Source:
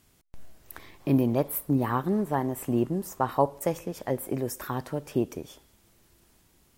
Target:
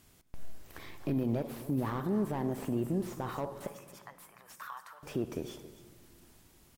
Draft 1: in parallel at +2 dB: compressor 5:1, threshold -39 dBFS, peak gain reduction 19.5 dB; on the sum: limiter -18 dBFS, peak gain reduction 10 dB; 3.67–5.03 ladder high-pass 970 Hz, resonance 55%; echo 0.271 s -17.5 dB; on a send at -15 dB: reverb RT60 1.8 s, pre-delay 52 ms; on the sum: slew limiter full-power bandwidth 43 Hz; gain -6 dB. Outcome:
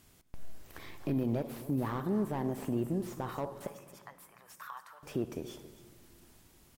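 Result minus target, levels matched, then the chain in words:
compressor: peak gain reduction +8.5 dB
in parallel at +2 dB: compressor 5:1, threshold -28.5 dBFS, peak gain reduction 11.5 dB; on the sum: limiter -18 dBFS, peak gain reduction 12 dB; 3.67–5.03 ladder high-pass 970 Hz, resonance 55%; echo 0.271 s -17.5 dB; on a send at -15 dB: reverb RT60 1.8 s, pre-delay 52 ms; on the sum: slew limiter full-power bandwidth 43 Hz; gain -6 dB

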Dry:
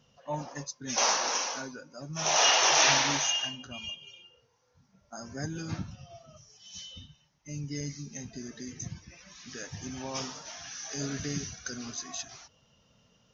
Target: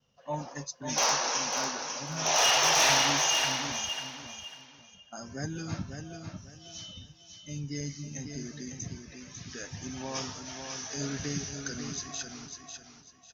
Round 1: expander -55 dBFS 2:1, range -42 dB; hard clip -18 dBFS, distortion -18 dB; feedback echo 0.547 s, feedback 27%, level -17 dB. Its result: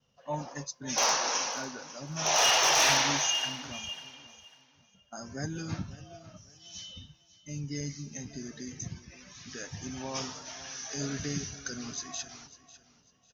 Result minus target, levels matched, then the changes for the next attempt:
echo-to-direct -10.5 dB
change: feedback echo 0.547 s, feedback 27%, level -6.5 dB

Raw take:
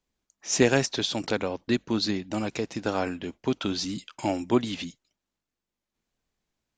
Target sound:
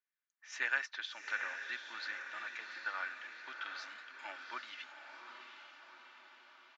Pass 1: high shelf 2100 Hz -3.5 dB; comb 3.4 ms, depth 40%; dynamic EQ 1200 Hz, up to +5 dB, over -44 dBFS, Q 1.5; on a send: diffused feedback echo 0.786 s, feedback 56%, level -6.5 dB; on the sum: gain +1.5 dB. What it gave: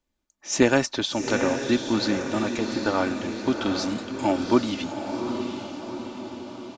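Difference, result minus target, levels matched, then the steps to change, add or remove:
2000 Hz band -10.0 dB
add after dynamic EQ: ladder band-pass 1900 Hz, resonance 55%

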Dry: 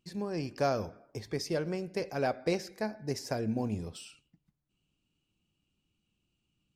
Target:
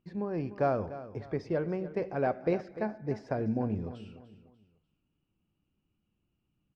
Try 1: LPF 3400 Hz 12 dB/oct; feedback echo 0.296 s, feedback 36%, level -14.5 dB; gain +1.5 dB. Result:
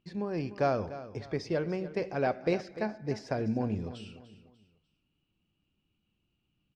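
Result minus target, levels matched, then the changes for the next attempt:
4000 Hz band +10.5 dB
change: LPF 1700 Hz 12 dB/oct

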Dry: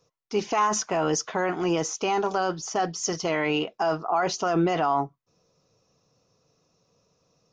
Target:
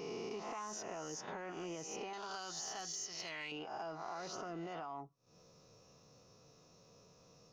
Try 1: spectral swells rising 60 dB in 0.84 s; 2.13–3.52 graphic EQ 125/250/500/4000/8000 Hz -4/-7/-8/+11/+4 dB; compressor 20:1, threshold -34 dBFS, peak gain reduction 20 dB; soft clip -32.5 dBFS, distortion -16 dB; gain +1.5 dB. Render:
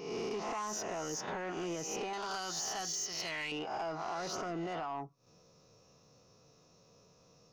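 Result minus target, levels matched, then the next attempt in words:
compressor: peak gain reduction -7.5 dB
spectral swells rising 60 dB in 0.84 s; 2.13–3.52 graphic EQ 125/250/500/4000/8000 Hz -4/-7/-8/+11/+4 dB; compressor 20:1, threshold -42 dBFS, peak gain reduction 28 dB; soft clip -32.5 dBFS, distortion -27 dB; gain +1.5 dB

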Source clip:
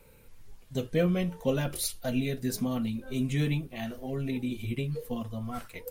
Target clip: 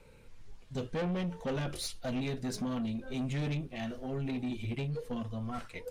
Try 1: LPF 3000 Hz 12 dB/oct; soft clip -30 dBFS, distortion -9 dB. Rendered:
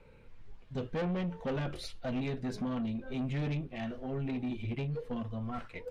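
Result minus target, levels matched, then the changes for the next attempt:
8000 Hz band -11.0 dB
change: LPF 6700 Hz 12 dB/oct

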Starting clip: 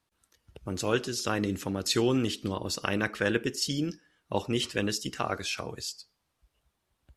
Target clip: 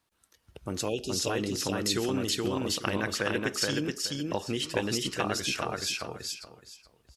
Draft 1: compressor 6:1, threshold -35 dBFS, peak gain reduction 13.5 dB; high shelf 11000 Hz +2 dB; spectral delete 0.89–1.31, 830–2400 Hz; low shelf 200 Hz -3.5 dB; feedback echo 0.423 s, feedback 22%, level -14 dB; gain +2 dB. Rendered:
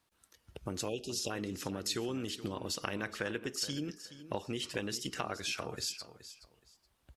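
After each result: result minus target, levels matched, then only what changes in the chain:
echo-to-direct -12 dB; compressor: peak gain reduction +6 dB
change: feedback echo 0.423 s, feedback 22%, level -2 dB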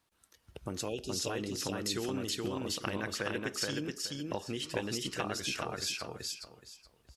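compressor: peak gain reduction +6 dB
change: compressor 6:1, threshold -27.5 dBFS, peak gain reduction 7.5 dB

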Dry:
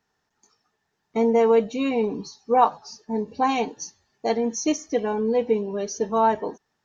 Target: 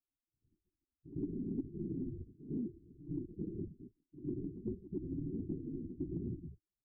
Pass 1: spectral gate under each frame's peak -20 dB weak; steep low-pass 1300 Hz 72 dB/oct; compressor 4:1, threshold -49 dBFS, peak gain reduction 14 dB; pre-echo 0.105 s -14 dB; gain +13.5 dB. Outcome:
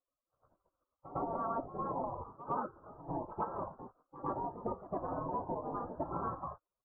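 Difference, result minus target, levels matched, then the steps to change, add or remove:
500 Hz band +4.5 dB
change: steep low-pass 370 Hz 72 dB/oct

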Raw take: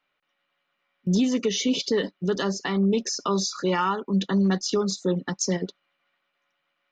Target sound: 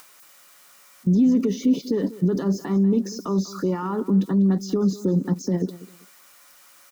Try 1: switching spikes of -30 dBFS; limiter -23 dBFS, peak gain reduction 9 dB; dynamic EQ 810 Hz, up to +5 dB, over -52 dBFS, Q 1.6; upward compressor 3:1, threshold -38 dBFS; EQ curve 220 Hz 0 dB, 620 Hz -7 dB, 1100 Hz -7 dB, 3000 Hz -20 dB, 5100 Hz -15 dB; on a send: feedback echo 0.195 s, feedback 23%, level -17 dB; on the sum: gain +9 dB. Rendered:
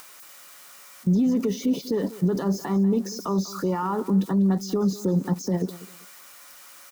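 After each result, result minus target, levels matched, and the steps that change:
1000 Hz band +5.5 dB; switching spikes: distortion +7 dB
change: dynamic EQ 280 Hz, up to +5 dB, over -52 dBFS, Q 1.6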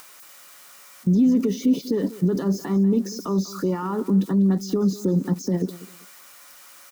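switching spikes: distortion +7 dB
change: switching spikes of -37 dBFS

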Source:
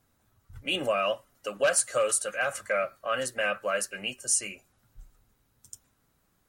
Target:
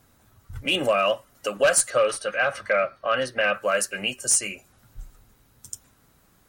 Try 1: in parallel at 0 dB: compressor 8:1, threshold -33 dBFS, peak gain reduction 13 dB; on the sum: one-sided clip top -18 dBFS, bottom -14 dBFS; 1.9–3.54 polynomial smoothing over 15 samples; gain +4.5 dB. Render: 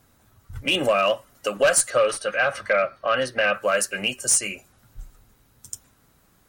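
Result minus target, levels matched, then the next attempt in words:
compressor: peak gain reduction -8 dB
in parallel at 0 dB: compressor 8:1, threshold -42 dBFS, peak gain reduction 21 dB; on the sum: one-sided clip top -18 dBFS, bottom -14 dBFS; 1.9–3.54 polynomial smoothing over 15 samples; gain +4.5 dB

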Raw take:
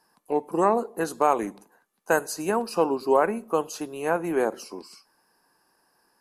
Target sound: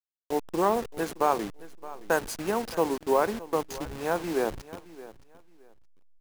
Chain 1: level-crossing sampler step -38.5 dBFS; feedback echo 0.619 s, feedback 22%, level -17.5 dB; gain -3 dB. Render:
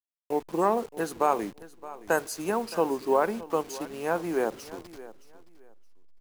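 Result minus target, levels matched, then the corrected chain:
level-crossing sampler: distortion -8 dB
level-crossing sampler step -29.5 dBFS; feedback echo 0.619 s, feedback 22%, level -17.5 dB; gain -3 dB

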